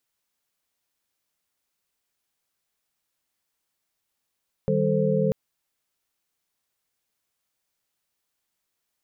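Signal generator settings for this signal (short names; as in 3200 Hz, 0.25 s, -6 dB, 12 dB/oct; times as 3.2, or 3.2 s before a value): chord D#3/G3/A4/C5 sine, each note -25 dBFS 0.64 s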